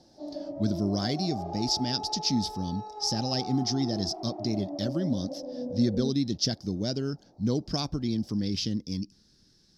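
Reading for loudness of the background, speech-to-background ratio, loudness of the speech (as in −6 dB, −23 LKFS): −38.0 LKFS, 8.0 dB, −30.0 LKFS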